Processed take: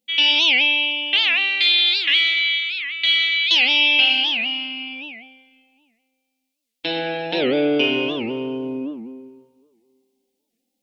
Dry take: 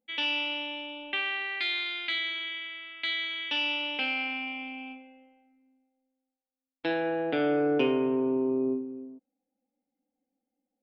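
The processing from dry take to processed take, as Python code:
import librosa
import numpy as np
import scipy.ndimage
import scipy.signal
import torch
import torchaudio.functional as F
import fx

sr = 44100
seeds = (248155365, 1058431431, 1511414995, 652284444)

y = fx.high_shelf_res(x, sr, hz=2100.0, db=11.0, q=1.5)
y = fx.rev_plate(y, sr, seeds[0], rt60_s=1.7, hf_ratio=0.9, predelay_ms=0, drr_db=-0.5)
y = fx.record_warp(y, sr, rpm=78.0, depth_cents=250.0)
y = y * librosa.db_to_amplitude(1.5)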